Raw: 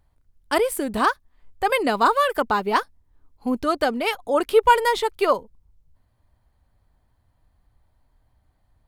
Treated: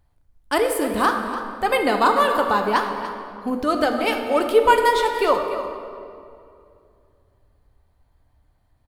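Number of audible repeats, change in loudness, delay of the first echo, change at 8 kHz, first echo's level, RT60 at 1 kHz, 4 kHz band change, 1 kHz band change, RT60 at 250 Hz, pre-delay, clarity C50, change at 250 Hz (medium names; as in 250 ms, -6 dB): 1, +1.0 dB, 291 ms, +1.0 dB, -12.5 dB, 2.3 s, +1.5 dB, +1.5 dB, 2.9 s, 4 ms, 4.5 dB, +2.0 dB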